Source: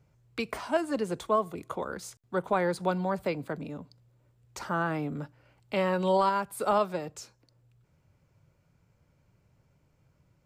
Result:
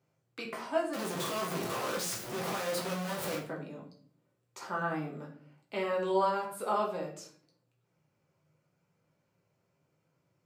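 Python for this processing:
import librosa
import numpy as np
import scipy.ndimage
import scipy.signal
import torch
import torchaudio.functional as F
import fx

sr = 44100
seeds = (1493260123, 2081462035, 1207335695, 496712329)

y = fx.clip_1bit(x, sr, at=(0.93, 3.38))
y = scipy.signal.sosfilt(scipy.signal.butter(2, 210.0, 'highpass', fs=sr, output='sos'), y)
y = fx.room_shoebox(y, sr, seeds[0], volume_m3=57.0, walls='mixed', distance_m=0.81)
y = y * librosa.db_to_amplitude(-8.0)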